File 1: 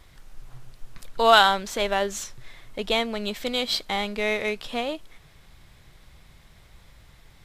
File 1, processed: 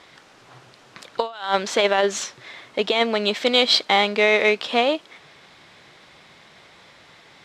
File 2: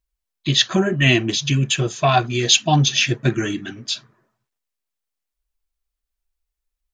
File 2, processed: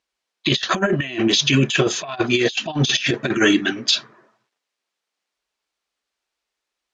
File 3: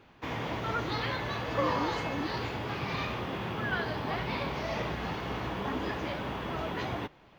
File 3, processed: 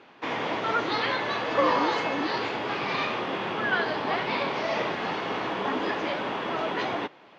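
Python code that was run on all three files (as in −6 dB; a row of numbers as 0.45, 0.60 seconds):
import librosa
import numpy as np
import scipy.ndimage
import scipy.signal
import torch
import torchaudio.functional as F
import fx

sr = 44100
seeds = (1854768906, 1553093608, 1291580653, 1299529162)

y = fx.bandpass_edges(x, sr, low_hz=280.0, high_hz=5500.0)
y = fx.over_compress(y, sr, threshold_db=-25.0, ratio=-0.5)
y = y * 10.0 ** (7.0 / 20.0)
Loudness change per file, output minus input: +3.5, −1.0, +6.0 LU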